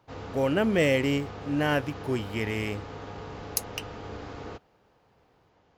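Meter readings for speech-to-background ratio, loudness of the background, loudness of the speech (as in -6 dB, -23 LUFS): 12.5 dB, -40.5 LUFS, -28.0 LUFS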